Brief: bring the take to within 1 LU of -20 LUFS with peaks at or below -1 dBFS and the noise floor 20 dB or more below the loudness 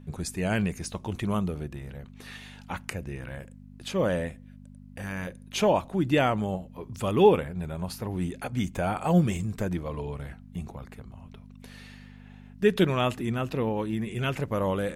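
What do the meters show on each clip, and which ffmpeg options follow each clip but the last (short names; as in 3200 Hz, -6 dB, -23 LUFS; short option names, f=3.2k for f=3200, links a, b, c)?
hum 50 Hz; harmonics up to 250 Hz; hum level -48 dBFS; loudness -28.0 LUFS; peak -8.0 dBFS; loudness target -20.0 LUFS
-> -af "bandreject=f=50:t=h:w=4,bandreject=f=100:t=h:w=4,bandreject=f=150:t=h:w=4,bandreject=f=200:t=h:w=4,bandreject=f=250:t=h:w=4"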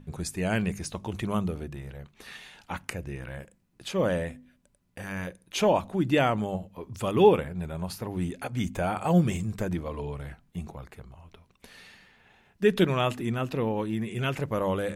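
hum none; loudness -28.5 LUFS; peak -7.5 dBFS; loudness target -20.0 LUFS
-> -af "volume=8.5dB,alimiter=limit=-1dB:level=0:latency=1"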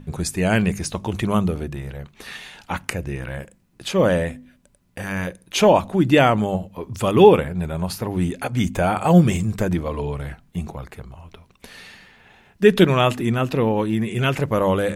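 loudness -20.0 LUFS; peak -1.0 dBFS; noise floor -58 dBFS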